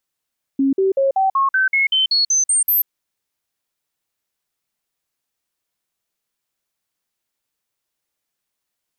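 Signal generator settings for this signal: stepped sine 272 Hz up, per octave 2, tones 12, 0.14 s, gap 0.05 s -13 dBFS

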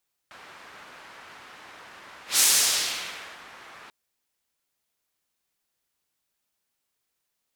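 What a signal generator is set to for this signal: whoosh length 3.59 s, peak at 2.08, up 0.14 s, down 1.17 s, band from 1500 Hz, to 7900 Hz, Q 0.97, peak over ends 29 dB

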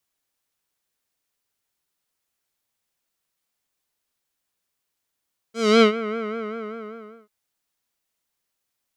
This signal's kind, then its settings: synth patch with vibrato A4, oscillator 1 square, interval 0 st, oscillator 2 level -18 dB, sub -2.5 dB, filter lowpass, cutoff 1400 Hz, Q 1.3, filter envelope 2.5 oct, filter decay 0.46 s, filter sustain 20%, attack 0.278 s, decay 0.10 s, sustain -15 dB, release 1.16 s, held 0.58 s, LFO 5.1 Hz, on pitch 84 cents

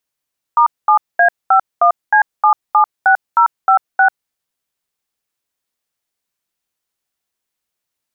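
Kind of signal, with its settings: DTMF "*7A51C776056", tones 94 ms, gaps 0.217 s, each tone -9.5 dBFS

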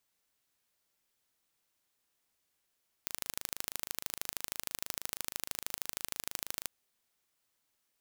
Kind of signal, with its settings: pulse train 26.2/s, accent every 2, -7 dBFS 3.61 s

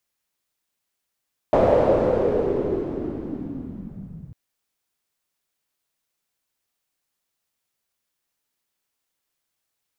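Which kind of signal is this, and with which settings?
swept filtered noise white, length 2.80 s lowpass, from 600 Hz, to 130 Hz, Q 4, linear, gain ramp -19 dB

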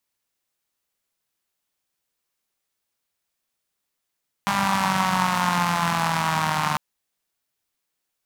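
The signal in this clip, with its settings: four-cylinder engine model, changing speed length 2.30 s, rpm 6000, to 4500, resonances 180/940 Hz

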